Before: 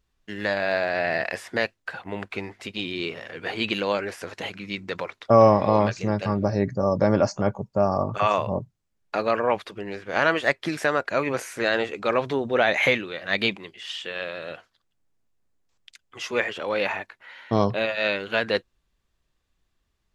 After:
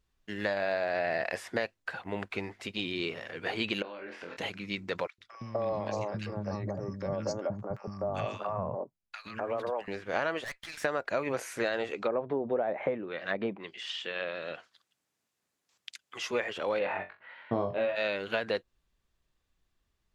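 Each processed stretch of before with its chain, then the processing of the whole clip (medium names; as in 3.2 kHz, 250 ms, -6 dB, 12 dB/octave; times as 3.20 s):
3.82–4.37 s: Chebyshev band-pass 190–2900 Hz + compression 20:1, threshold -35 dBFS + flutter echo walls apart 4 m, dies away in 0.3 s
5.07–9.88 s: gate -37 dBFS, range -9 dB + compression 10:1, threshold -24 dBFS + three bands offset in time highs, lows, mids 110/250 ms, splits 270/1400 Hz
10.44–10.84 s: high-pass 1.2 kHz + valve stage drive 31 dB, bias 0.5
11.90–16.22 s: low-pass that closes with the level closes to 830 Hz, closed at -21 dBFS + high-pass 140 Hz + tape noise reduction on one side only encoder only
16.79–17.96 s: high-pass 82 Hz + distance through air 350 m + flutter echo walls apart 3.7 m, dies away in 0.23 s
whole clip: dynamic bell 620 Hz, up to +4 dB, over -32 dBFS, Q 1.1; compression 6:1, threshold -23 dBFS; trim -3.5 dB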